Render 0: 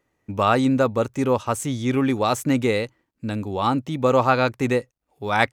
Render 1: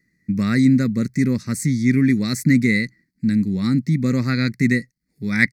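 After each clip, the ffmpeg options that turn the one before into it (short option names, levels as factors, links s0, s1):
-af "firequalizer=gain_entry='entry(100,0);entry(180,15);entry(280,2);entry(470,-12);entry(810,-28);entry(2000,11);entry(3000,-24);entry(4300,9);entry(6400,1)':delay=0.05:min_phase=1,volume=1.12"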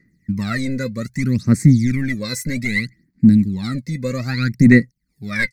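-af "apsyclip=3.76,aphaser=in_gain=1:out_gain=1:delay=2:decay=0.78:speed=0.63:type=sinusoidal,volume=0.2"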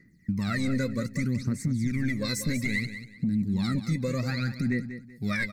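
-filter_complex "[0:a]acompressor=threshold=0.158:ratio=6,alimiter=limit=0.106:level=0:latency=1:release=312,asplit=2[s0][s1];[s1]aecho=0:1:190|380|570:0.282|0.0761|0.0205[s2];[s0][s2]amix=inputs=2:normalize=0"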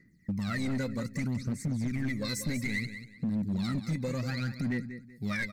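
-af "volume=13.3,asoftclip=hard,volume=0.075,volume=0.668"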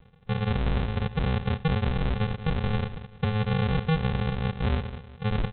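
-af "aresample=8000,acrusher=samples=25:mix=1:aa=0.000001,aresample=44100,aecho=1:1:73:0.0891,volume=2"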